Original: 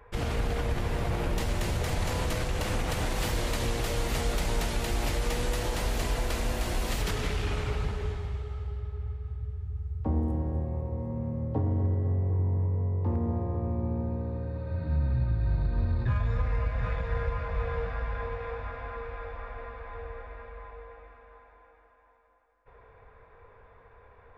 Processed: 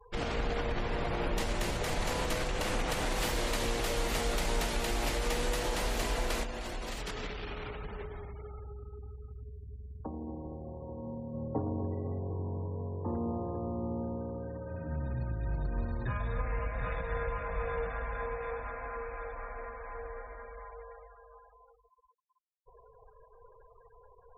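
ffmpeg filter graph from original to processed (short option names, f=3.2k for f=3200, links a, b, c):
-filter_complex "[0:a]asettb=1/sr,asplit=3[a][b][c];[a]atrim=end=6.434[d];[b]atrim=start=6.43:end=11.35,asetpts=PTS-STARTPTS,afade=t=in:d=0.004:c=qsin,afade=t=out:st=4.916:d=0.004:c=qsin,acompressor=threshold=-32dB:ratio=4:attack=3.2:release=140:knee=1:detection=peak,aecho=1:1:779:0.0841,atrim=end_sample=216972[e];[c]atrim=start=11.346[f];[d][e]acrossfade=d=0.004:c1=hsin:c2=qsin[g];[g][f]acrossfade=d=0.004:c1=qsin:c2=hsin,afftfilt=real='re*gte(hypot(re,im),0.00447)':imag='im*gte(hypot(re,im),0.00447)':win_size=1024:overlap=0.75,equalizer=f=85:w=0.84:g=-11"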